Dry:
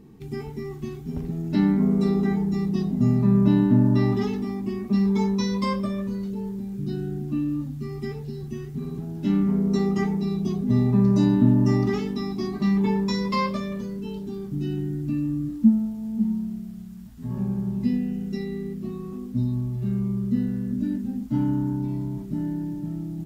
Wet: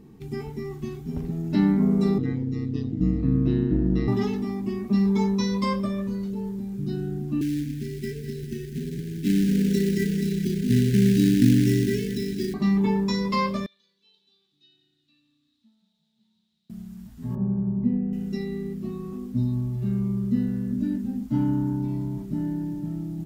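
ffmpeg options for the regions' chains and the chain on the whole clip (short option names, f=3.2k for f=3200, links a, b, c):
-filter_complex "[0:a]asettb=1/sr,asplit=3[a][b][c];[a]atrim=end=2.184[d];[b]atrim=start=2.18:end=4.08,asetpts=PTS-STARTPTS,afade=t=in:d=0.004:c=qsin,afade=t=out:st=1.896:d=0.004:c=qsin,lowpass=4.4k,equalizer=f=880:w=1.4:g=-15,aeval=exprs='val(0)*sin(2*PI*64*n/s)':c=same[e];[c]atrim=start=4.076[f];[d][e]acrossfade=d=0.004:c1=hsin:c2=qsin[g];[g][f]acrossfade=d=0.004:c1=qsin:c2=hsin,asettb=1/sr,asplit=3[h][i][j];[h]atrim=end=7.414[k];[i]atrim=start=7.41:end=12.54,asetpts=PTS-STARTPTS,afade=t=in:d=0.004:c=qsin,afade=t=out:st=5.126:d=0.004:c=qsin,acrusher=bits=4:mode=log:mix=0:aa=0.000001,asuperstop=centerf=880:order=20:qfactor=0.87,aecho=1:1:200|400|600|800|1000:0.282|0.13|0.0596|0.0274|0.0126,atrim=end_sample=226233[l];[j]atrim=start=12.536[m];[k][l]acrossfade=d=0.004:c1=hsin:c2=qsin[n];[n][m]acrossfade=d=0.004:c1=qsin:c2=hsin,asettb=1/sr,asplit=3[o][p][q];[o]atrim=end=13.664[r];[p]atrim=start=13.66:end=16.7,asetpts=PTS-STARTPTS,afade=t=in:d=0.004:c=qsin,afade=t=out:st=3.036:d=0.004:c=qsin,bandpass=f=3.8k:t=q:w=11,asplit=6[s][t][u][v][w][x];[t]adelay=174,afreqshift=-30,volume=-12.5dB[y];[u]adelay=348,afreqshift=-60,volume=-18.7dB[z];[v]adelay=522,afreqshift=-90,volume=-24.9dB[aa];[w]adelay=696,afreqshift=-120,volume=-31.1dB[ab];[x]adelay=870,afreqshift=-150,volume=-37.3dB[ac];[s][y][z][aa][ab][ac]amix=inputs=6:normalize=0,atrim=end_sample=134064[ad];[q]atrim=start=16.696[ae];[r][ad]acrossfade=d=0.004:c1=hsin:c2=qsin[af];[af][ae]acrossfade=d=0.004:c1=qsin:c2=hsin,asettb=1/sr,asplit=3[ag][ah][ai];[ag]atrim=end=17.354[aj];[ah]atrim=start=17.35:end=18.13,asetpts=PTS-STARTPTS,afade=t=in:d=0.004:c=qsin,afade=t=out:st=0.776:d=0.004:c=qsin,lowpass=1k,asplit=2[ak][al];[al]adelay=26,volume=-12dB[am];[ak][am]amix=inputs=2:normalize=0,atrim=end_sample=34398[an];[ai]atrim=start=18.126[ao];[aj][an]acrossfade=d=0.004:c1=hsin:c2=qsin[ap];[ap][ao]acrossfade=d=0.004:c1=qsin:c2=hsin"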